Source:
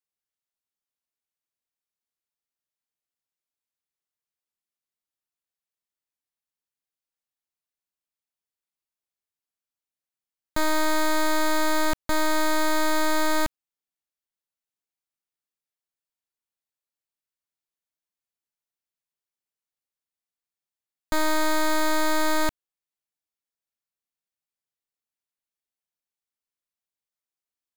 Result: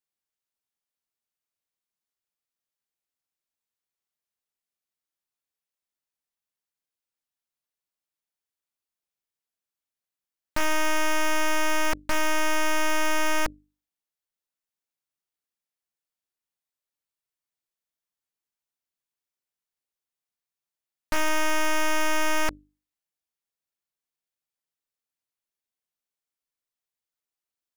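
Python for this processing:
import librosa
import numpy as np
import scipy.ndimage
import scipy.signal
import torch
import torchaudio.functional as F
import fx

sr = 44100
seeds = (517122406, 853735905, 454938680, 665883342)

y = fx.hum_notches(x, sr, base_hz=50, count=6)
y = fx.doppler_dist(y, sr, depth_ms=0.71)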